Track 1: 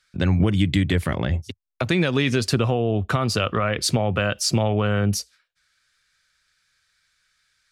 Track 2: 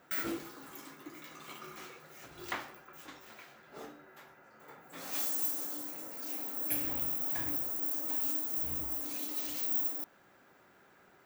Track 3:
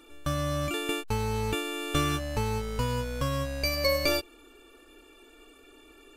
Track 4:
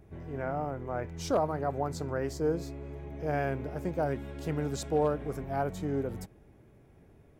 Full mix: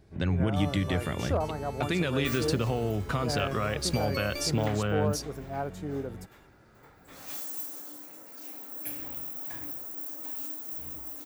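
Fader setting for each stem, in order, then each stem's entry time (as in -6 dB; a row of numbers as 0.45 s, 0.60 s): -8.0 dB, -3.5 dB, -11.5 dB, -2.5 dB; 0.00 s, 2.15 s, 0.30 s, 0.00 s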